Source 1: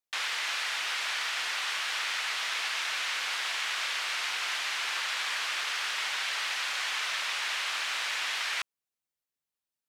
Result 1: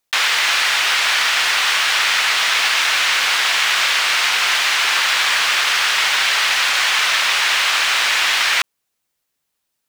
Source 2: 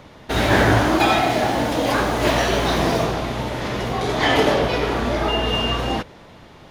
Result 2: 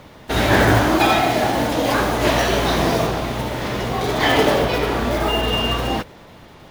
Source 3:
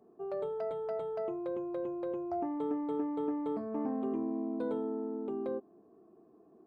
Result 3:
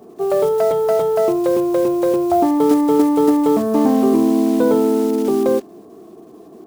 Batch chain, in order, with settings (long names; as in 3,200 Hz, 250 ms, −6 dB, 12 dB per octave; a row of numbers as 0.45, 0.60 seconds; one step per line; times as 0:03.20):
one scale factor per block 5 bits
normalise the peak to −3 dBFS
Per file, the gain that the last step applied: +15.5, +1.0, +20.0 decibels